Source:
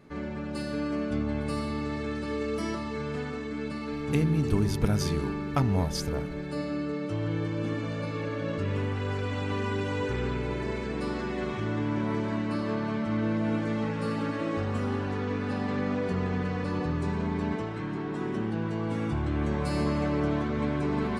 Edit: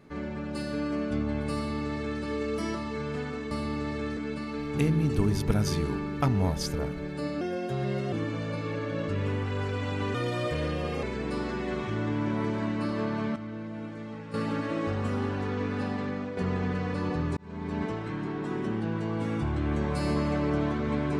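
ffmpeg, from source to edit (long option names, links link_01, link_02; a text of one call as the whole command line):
ffmpeg -i in.wav -filter_complex "[0:a]asplit=11[link_01][link_02][link_03][link_04][link_05][link_06][link_07][link_08][link_09][link_10][link_11];[link_01]atrim=end=3.512[link_12];[link_02]atrim=start=1.558:end=2.222[link_13];[link_03]atrim=start=3.508:end=6.754[link_14];[link_04]atrim=start=6.75:end=7.62,asetpts=PTS-STARTPTS,asetrate=53802,aresample=44100,atrim=end_sample=31448,asetpts=PTS-STARTPTS[link_15];[link_05]atrim=start=7.616:end=9.644[link_16];[link_06]atrim=start=9.64:end=10.73,asetpts=PTS-STARTPTS,asetrate=54243,aresample=44100,atrim=end_sample=39080,asetpts=PTS-STARTPTS[link_17];[link_07]atrim=start=10.726:end=13.062[link_18];[link_08]atrim=start=13.058:end=14.042,asetpts=PTS-STARTPTS,volume=-10dB[link_19];[link_09]atrim=start=14.038:end=16.07,asetpts=PTS-STARTPTS,afade=type=out:start_time=1.482:duration=0.55:silence=0.398107[link_20];[link_10]atrim=start=16.07:end=17.07,asetpts=PTS-STARTPTS,afade=type=in:duration=0.004:curve=hsin:silence=0.398107,afade=type=out:start_time=0.996:duration=0.004:curve=hsin[link_21];[link_11]atrim=start=17.07,asetpts=PTS-STARTPTS,afade=type=in:duration=0.48[link_22];[link_12][link_13]acrossfade=duration=0.004:curve1=hsin:curve2=hsin[link_23];[link_23][link_14]acrossfade=duration=0.004:curve1=hsin:curve2=hsin[link_24];[link_24][link_15]acrossfade=duration=0.004:curve1=hsin:curve2=hsin[link_25];[link_25][link_16]acrossfade=duration=0.004:curve1=hsin:curve2=hsin[link_26];[link_26][link_17]acrossfade=duration=0.004:curve1=hsin:curve2=hsin[link_27];[link_27][link_18]acrossfade=duration=0.004:curve1=hsin:curve2=hsin[link_28];[link_28][link_19]acrossfade=duration=0.004:curve1=hsin:curve2=hsin[link_29];[link_20][link_21][link_22]concat=n=3:v=0:a=1[link_30];[link_29][link_30]acrossfade=duration=0.004:curve1=hsin:curve2=hsin" out.wav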